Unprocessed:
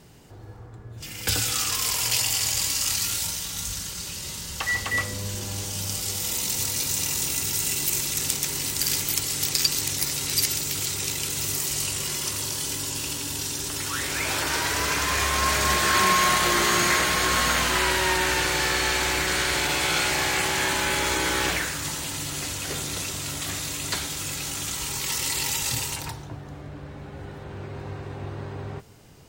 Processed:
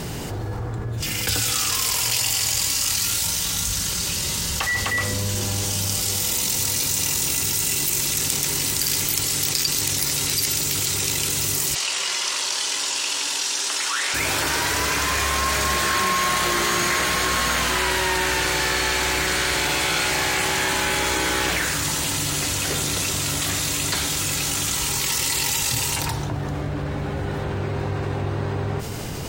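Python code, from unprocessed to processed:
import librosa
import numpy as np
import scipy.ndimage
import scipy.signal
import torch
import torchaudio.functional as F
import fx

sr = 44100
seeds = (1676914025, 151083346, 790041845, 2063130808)

y = fx.bandpass_edges(x, sr, low_hz=720.0, high_hz=fx.line((11.74, 5200.0), (14.13, 7900.0)), at=(11.74, 14.13), fade=0.02)
y = fx.env_flatten(y, sr, amount_pct=70)
y = F.gain(torch.from_numpy(y), -2.0).numpy()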